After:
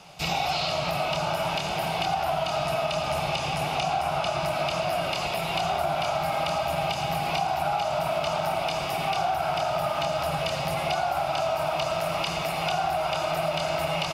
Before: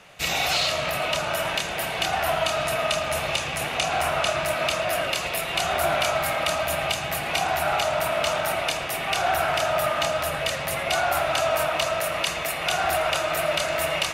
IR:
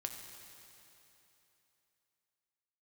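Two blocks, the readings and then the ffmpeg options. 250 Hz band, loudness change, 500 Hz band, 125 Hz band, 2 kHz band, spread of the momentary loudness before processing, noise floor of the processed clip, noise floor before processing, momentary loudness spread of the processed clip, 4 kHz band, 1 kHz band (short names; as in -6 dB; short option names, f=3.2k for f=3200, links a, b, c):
+1.5 dB, -3.0 dB, -2.0 dB, +2.5 dB, -6.5 dB, 3 LU, -30 dBFS, -30 dBFS, 1 LU, -4.5 dB, 0.0 dB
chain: -filter_complex "[0:a]equalizer=f=1.8k:t=o:w=0.41:g=-11.5,asplit=2[a][b];[1:a]atrim=start_sample=2205[c];[b][c]afir=irnorm=-1:irlink=0,volume=-3.5dB[d];[a][d]amix=inputs=2:normalize=0,acrossover=split=3400[e][f];[f]acompressor=threshold=-36dB:ratio=4:attack=1:release=60[g];[e][g]amix=inputs=2:normalize=0,equalizer=f=160:t=o:w=0.33:g=9,equalizer=f=500:t=o:w=0.33:g=-4,equalizer=f=800:t=o:w=0.33:g=8,equalizer=f=5k:t=o:w=0.33:g=9,asplit=2[h][i];[i]adelay=90,highpass=300,lowpass=3.4k,asoftclip=type=hard:threshold=-15dB,volume=-13dB[j];[h][j]amix=inputs=2:normalize=0,acompressor=threshold=-20dB:ratio=6,volume=-3dB"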